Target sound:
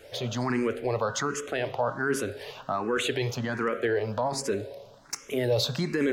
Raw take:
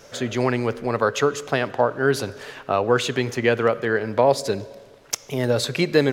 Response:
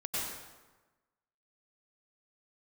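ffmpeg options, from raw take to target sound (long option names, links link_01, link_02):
-filter_complex "[0:a]bandreject=frequency=135:width_type=h:width=4,bandreject=frequency=270:width_type=h:width=4,bandreject=frequency=405:width_type=h:width=4,bandreject=frequency=540:width_type=h:width=4,bandreject=frequency=675:width_type=h:width=4,bandreject=frequency=810:width_type=h:width=4,bandreject=frequency=945:width_type=h:width=4,bandreject=frequency=1080:width_type=h:width=4,bandreject=frequency=1215:width_type=h:width=4,bandreject=frequency=1350:width_type=h:width=4,bandreject=frequency=1485:width_type=h:width=4,bandreject=frequency=1620:width_type=h:width=4,bandreject=frequency=1755:width_type=h:width=4,bandreject=frequency=1890:width_type=h:width=4,bandreject=frequency=2025:width_type=h:width=4,bandreject=frequency=2160:width_type=h:width=4,bandreject=frequency=2295:width_type=h:width=4,bandreject=frequency=2430:width_type=h:width=4,bandreject=frequency=2565:width_type=h:width=4,bandreject=frequency=2700:width_type=h:width=4,bandreject=frequency=2835:width_type=h:width=4,bandreject=frequency=2970:width_type=h:width=4,bandreject=frequency=3105:width_type=h:width=4,bandreject=frequency=3240:width_type=h:width=4,bandreject=frequency=3375:width_type=h:width=4,bandreject=frequency=3510:width_type=h:width=4,bandreject=frequency=3645:width_type=h:width=4,bandreject=frequency=3780:width_type=h:width=4,bandreject=frequency=3915:width_type=h:width=4,alimiter=limit=-14.5dB:level=0:latency=1:release=11,asplit=2[link_01][link_02];[link_02]afreqshift=1.3[link_03];[link_01][link_03]amix=inputs=2:normalize=1"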